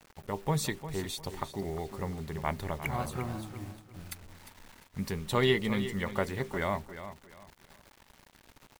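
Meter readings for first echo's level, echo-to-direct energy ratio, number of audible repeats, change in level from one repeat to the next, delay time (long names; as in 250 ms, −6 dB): −12.0 dB, −11.5 dB, 3, −11.0 dB, 352 ms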